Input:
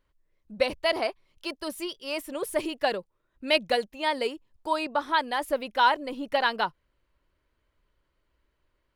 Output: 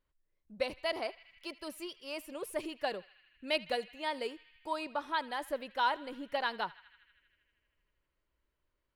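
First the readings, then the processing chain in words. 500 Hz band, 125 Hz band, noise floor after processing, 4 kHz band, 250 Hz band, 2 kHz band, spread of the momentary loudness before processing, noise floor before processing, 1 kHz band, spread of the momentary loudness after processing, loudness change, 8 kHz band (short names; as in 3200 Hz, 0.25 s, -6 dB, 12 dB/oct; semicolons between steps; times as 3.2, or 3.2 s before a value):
-9.0 dB, n/a, -83 dBFS, -9.0 dB, -9.0 dB, -9.0 dB, 11 LU, -76 dBFS, -9.0 dB, 11 LU, -9.0 dB, -9.0 dB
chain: narrowing echo 79 ms, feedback 83%, band-pass 2300 Hz, level -18.5 dB; gain -9 dB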